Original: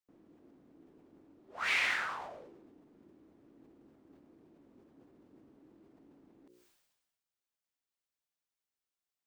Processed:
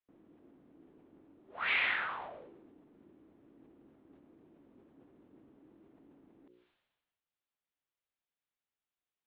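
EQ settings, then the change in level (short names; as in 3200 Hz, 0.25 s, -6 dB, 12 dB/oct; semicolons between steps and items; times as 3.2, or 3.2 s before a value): steep low-pass 3700 Hz 48 dB/oct; 0.0 dB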